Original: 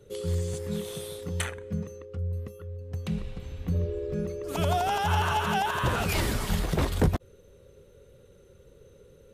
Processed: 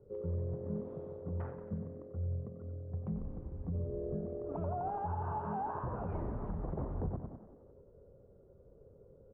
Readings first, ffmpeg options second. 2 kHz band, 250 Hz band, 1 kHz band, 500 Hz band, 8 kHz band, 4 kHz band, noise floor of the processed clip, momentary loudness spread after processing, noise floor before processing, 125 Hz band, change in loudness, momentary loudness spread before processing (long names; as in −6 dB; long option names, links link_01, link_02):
−25.0 dB, −8.5 dB, −10.5 dB, −8.5 dB, below −40 dB, below −40 dB, −61 dBFS, 7 LU, −56 dBFS, −8.5 dB, −10.0 dB, 11 LU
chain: -filter_complex "[0:a]lowpass=frequency=1000:width=0.5412,lowpass=frequency=1000:width=1.3066,asplit=2[link_01][link_02];[link_02]aecho=0:1:100|200|300:0.237|0.0806|0.0274[link_03];[link_01][link_03]amix=inputs=2:normalize=0,alimiter=limit=-24dB:level=0:latency=1:release=156,asplit=2[link_04][link_05];[link_05]asplit=7[link_06][link_07][link_08][link_09][link_10][link_11][link_12];[link_06]adelay=91,afreqshift=42,volume=-13dB[link_13];[link_07]adelay=182,afreqshift=84,volume=-17.2dB[link_14];[link_08]adelay=273,afreqshift=126,volume=-21.3dB[link_15];[link_09]adelay=364,afreqshift=168,volume=-25.5dB[link_16];[link_10]adelay=455,afreqshift=210,volume=-29.6dB[link_17];[link_11]adelay=546,afreqshift=252,volume=-33.8dB[link_18];[link_12]adelay=637,afreqshift=294,volume=-37.9dB[link_19];[link_13][link_14][link_15][link_16][link_17][link_18][link_19]amix=inputs=7:normalize=0[link_20];[link_04][link_20]amix=inputs=2:normalize=0,volume=-5.5dB"